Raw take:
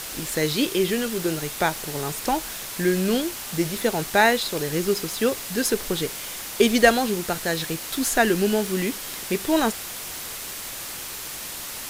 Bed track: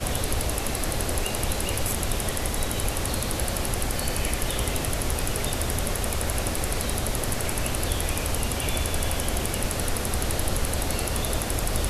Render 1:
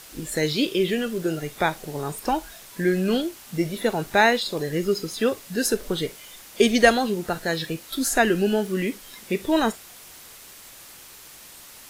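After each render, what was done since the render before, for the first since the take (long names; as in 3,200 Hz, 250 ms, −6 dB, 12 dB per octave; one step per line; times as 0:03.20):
noise reduction from a noise print 11 dB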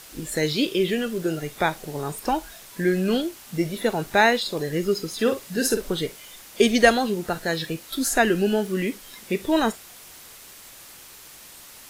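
0:05.14–0:05.90: double-tracking delay 48 ms −8 dB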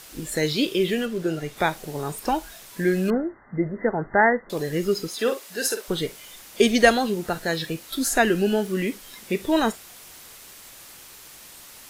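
0:01.05–0:01.56: high-shelf EQ 6,100 Hz → 10,000 Hz −9.5 dB
0:03.10–0:04.50: linear-phase brick-wall low-pass 2,100 Hz
0:05.07–0:05.88: high-pass filter 260 Hz → 660 Hz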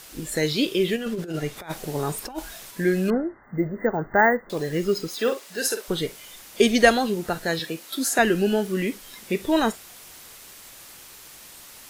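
0:00.96–0:02.71: compressor whose output falls as the input rises −28 dBFS, ratio −0.5
0:03.43–0:05.59: bad sample-rate conversion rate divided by 2×, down filtered, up hold
0:07.59–0:08.19: high-pass filter 210 Hz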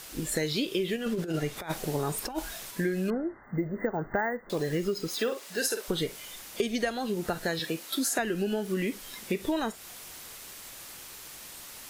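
downward compressor 16 to 1, threshold −25 dBFS, peak gain reduction 16 dB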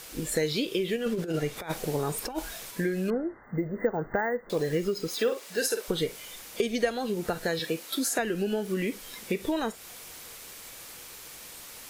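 hollow resonant body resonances 480/2,300 Hz, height 6 dB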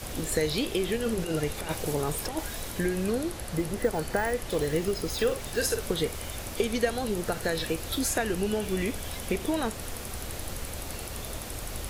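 mix in bed track −11 dB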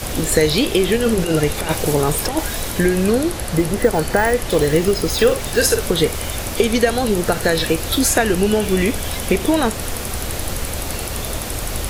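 level +12 dB
brickwall limiter −3 dBFS, peak gain reduction 2.5 dB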